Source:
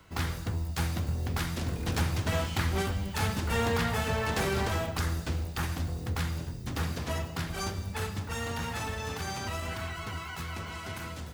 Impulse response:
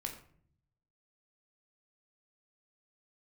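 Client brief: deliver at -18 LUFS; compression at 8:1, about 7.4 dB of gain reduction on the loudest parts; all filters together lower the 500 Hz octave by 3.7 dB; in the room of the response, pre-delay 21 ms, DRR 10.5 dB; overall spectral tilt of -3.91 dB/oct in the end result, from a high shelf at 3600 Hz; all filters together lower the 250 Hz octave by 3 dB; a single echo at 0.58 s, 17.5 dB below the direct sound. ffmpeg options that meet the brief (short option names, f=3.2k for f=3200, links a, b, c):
-filter_complex "[0:a]equalizer=f=250:t=o:g=-3.5,equalizer=f=500:t=o:g=-4,highshelf=f=3.6k:g=6,acompressor=threshold=-32dB:ratio=8,aecho=1:1:580:0.133,asplit=2[a][b];[1:a]atrim=start_sample=2205,adelay=21[c];[b][c]afir=irnorm=-1:irlink=0,volume=-9.5dB[d];[a][d]amix=inputs=2:normalize=0,volume=18dB"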